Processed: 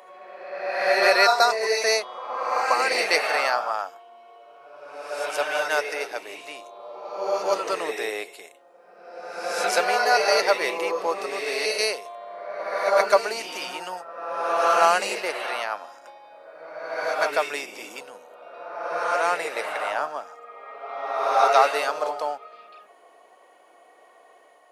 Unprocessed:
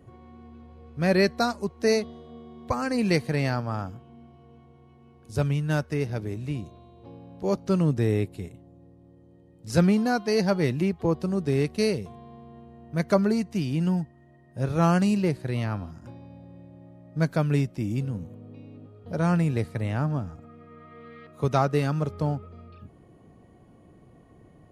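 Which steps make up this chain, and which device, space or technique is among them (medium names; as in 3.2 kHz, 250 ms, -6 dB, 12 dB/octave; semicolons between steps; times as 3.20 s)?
ghost voice (reverse; reverberation RT60 1.6 s, pre-delay 108 ms, DRR 0 dB; reverse; high-pass 610 Hz 24 dB/octave); trim +8 dB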